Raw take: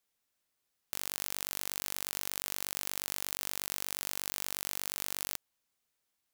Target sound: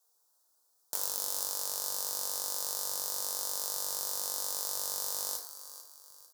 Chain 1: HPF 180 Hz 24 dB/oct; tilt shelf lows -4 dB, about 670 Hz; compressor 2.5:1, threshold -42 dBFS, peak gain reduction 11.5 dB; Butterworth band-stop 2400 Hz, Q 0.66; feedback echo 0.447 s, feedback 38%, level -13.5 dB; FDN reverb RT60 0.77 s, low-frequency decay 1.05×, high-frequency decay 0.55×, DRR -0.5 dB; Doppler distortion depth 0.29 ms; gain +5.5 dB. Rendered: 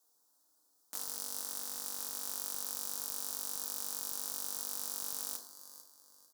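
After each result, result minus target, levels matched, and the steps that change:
250 Hz band +7.5 dB; compressor: peak gain reduction +6.5 dB
change: HPF 400 Hz 24 dB/oct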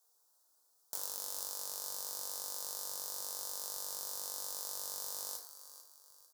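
compressor: peak gain reduction +6.5 dB
change: compressor 2.5:1, threshold -31 dBFS, peak gain reduction 4.5 dB

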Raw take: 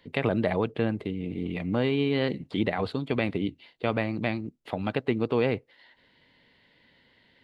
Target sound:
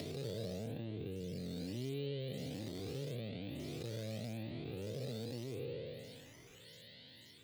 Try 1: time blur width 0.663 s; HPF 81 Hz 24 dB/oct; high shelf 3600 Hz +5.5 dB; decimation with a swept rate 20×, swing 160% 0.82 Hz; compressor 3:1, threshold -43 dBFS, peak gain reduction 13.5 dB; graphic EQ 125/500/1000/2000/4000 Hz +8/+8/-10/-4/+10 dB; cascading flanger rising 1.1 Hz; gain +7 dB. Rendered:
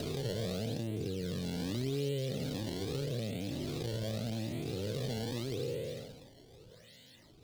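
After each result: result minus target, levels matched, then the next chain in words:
compressor: peak gain reduction -6.5 dB; decimation with a swept rate: distortion +9 dB
time blur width 0.663 s; HPF 81 Hz 24 dB/oct; high shelf 3600 Hz +5.5 dB; decimation with a swept rate 20×, swing 160% 0.82 Hz; compressor 3:1, threshold -52.5 dBFS, peak gain reduction 20 dB; graphic EQ 125/500/1000/2000/4000 Hz +8/+8/-10/-4/+10 dB; cascading flanger rising 1.1 Hz; gain +7 dB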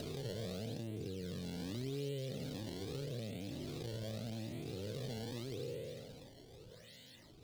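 decimation with a swept rate: distortion +9 dB
time blur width 0.663 s; HPF 81 Hz 24 dB/oct; high shelf 3600 Hz +5.5 dB; decimation with a swept rate 6×, swing 160% 0.82 Hz; compressor 3:1, threshold -52.5 dBFS, peak gain reduction 20 dB; graphic EQ 125/500/1000/2000/4000 Hz +8/+8/-10/-4/+10 dB; cascading flanger rising 1.1 Hz; gain +7 dB

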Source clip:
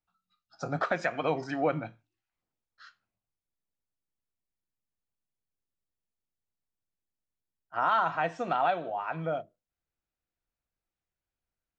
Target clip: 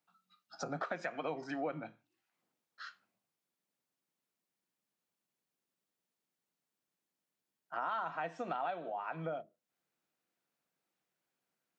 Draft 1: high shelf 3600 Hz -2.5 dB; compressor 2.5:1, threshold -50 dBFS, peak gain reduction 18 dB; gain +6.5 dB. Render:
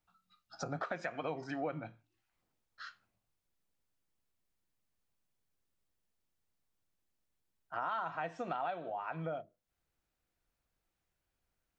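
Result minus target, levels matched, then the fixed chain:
125 Hz band +3.0 dB
HPF 160 Hz 24 dB/oct; high shelf 3600 Hz -2.5 dB; compressor 2.5:1, threshold -50 dBFS, peak gain reduction 18 dB; gain +6.5 dB

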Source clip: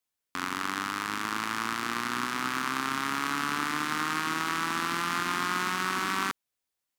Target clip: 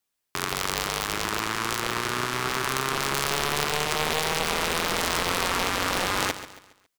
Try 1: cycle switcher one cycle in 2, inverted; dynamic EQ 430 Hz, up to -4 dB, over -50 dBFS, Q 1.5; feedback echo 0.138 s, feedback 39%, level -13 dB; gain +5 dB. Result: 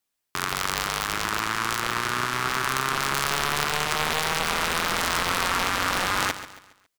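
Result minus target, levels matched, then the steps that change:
500 Hz band -4.0 dB
change: dynamic EQ 1400 Hz, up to -4 dB, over -50 dBFS, Q 1.5

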